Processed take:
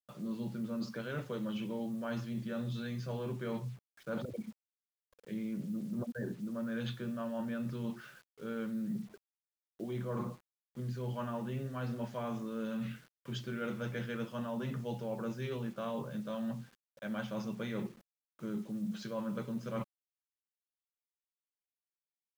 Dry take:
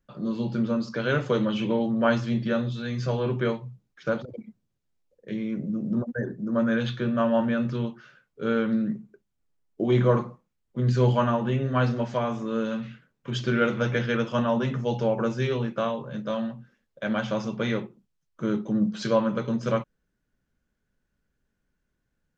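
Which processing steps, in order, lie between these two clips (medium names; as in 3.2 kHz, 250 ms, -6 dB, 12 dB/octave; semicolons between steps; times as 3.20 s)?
dynamic bell 190 Hz, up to +6 dB, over -43 dBFS, Q 3.6; reverse; compression 12:1, threshold -34 dBFS, peak gain reduction 19 dB; reverse; word length cut 10-bit, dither none; trim -1 dB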